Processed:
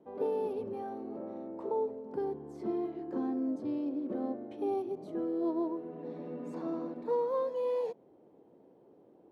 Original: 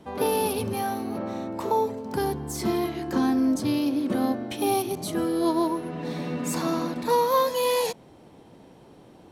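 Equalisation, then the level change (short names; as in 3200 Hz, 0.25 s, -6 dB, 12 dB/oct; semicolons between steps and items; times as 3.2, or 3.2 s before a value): band-pass 420 Hz, Q 1.5; -6.0 dB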